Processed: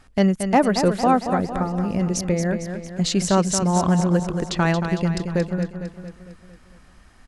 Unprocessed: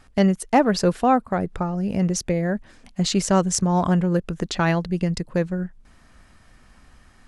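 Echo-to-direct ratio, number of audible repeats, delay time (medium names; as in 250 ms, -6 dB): -6.5 dB, 5, 227 ms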